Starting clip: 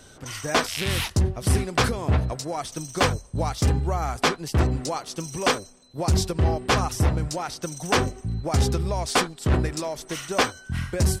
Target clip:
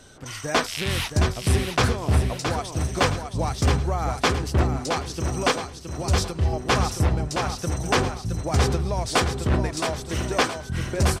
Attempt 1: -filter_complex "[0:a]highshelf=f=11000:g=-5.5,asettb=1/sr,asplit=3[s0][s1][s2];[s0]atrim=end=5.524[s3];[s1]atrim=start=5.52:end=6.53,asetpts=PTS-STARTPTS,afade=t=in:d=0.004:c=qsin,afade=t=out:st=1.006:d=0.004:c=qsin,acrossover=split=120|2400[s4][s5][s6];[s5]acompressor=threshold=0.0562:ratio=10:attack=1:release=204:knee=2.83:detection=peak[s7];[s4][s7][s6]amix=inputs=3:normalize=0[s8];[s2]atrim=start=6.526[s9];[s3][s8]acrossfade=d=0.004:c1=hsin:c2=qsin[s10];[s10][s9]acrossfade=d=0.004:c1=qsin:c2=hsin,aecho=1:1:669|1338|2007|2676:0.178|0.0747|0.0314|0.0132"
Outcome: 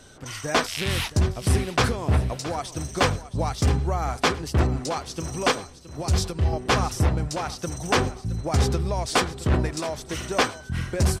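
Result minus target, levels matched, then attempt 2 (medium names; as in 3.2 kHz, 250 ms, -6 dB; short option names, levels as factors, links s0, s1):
echo-to-direct -8.5 dB
-filter_complex "[0:a]highshelf=f=11000:g=-5.5,asettb=1/sr,asplit=3[s0][s1][s2];[s0]atrim=end=5.524[s3];[s1]atrim=start=5.52:end=6.53,asetpts=PTS-STARTPTS,afade=t=in:d=0.004:c=qsin,afade=t=out:st=1.006:d=0.004:c=qsin,acrossover=split=120|2400[s4][s5][s6];[s5]acompressor=threshold=0.0562:ratio=10:attack=1:release=204:knee=2.83:detection=peak[s7];[s4][s7][s6]amix=inputs=3:normalize=0[s8];[s2]atrim=start=6.526[s9];[s3][s8]acrossfade=d=0.004:c1=hsin:c2=qsin[s10];[s10][s9]acrossfade=d=0.004:c1=qsin:c2=hsin,aecho=1:1:669|1338|2007|2676|3345:0.473|0.199|0.0835|0.0351|0.0147"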